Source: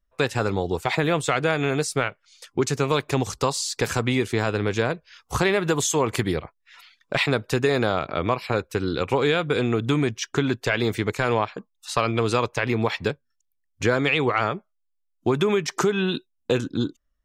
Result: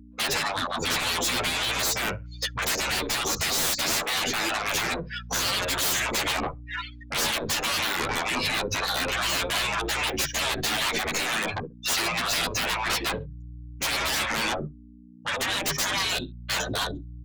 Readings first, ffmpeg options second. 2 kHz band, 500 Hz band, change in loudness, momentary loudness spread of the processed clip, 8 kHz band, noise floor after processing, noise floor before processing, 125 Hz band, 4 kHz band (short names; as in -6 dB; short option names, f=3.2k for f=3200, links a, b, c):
+1.0 dB, -10.5 dB, -1.5 dB, 7 LU, +5.0 dB, -45 dBFS, -73 dBFS, -11.0 dB, +6.0 dB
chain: -filter_complex "[0:a]bandreject=f=50:t=h:w=6,bandreject=f=100:t=h:w=6,bandreject=f=150:t=h:w=6,acrossover=split=450|3000[a][b][c];[b]acompressor=threshold=-30dB:ratio=4[d];[a][d][c]amix=inputs=3:normalize=0,aresample=16000,aeval=exprs='clip(val(0),-1,0.0596)':c=same,aresample=44100,aecho=1:1:67|134:0.0891|0.0214,afftdn=nr=35:nf=-43,aeval=exprs='0.299*(cos(1*acos(clip(val(0)/0.299,-1,1)))-cos(1*PI/2))+0.0188*(cos(2*acos(clip(val(0)/0.299,-1,1)))-cos(2*PI/2))+0.075*(cos(4*acos(clip(val(0)/0.299,-1,1)))-cos(4*PI/2))+0.00473*(cos(8*acos(clip(val(0)/0.299,-1,1)))-cos(8*PI/2))':c=same,asplit=2[e][f];[f]acompressor=threshold=-31dB:ratio=12,volume=-1dB[g];[e][g]amix=inputs=2:normalize=0,acrossover=split=540[h][i];[h]aeval=exprs='val(0)*(1-0.5/2+0.5/2*cos(2*PI*3.9*n/s))':c=same[j];[i]aeval=exprs='val(0)*(1-0.5/2-0.5/2*cos(2*PI*3.9*n/s))':c=same[k];[j][k]amix=inputs=2:normalize=0,afftfilt=real='re*lt(hypot(re,im),0.0447)':imag='im*lt(hypot(re,im),0.0447)':win_size=1024:overlap=0.75,aeval=exprs='val(0)+0.001*(sin(2*PI*60*n/s)+sin(2*PI*2*60*n/s)/2+sin(2*PI*3*60*n/s)/3+sin(2*PI*4*60*n/s)/4+sin(2*PI*5*60*n/s)/5)':c=same,aeval=exprs='0.119*sin(PI/2*7.94*val(0)/0.119)':c=same,asplit=2[l][m];[m]adelay=10.2,afreqshift=0.27[n];[l][n]amix=inputs=2:normalize=1"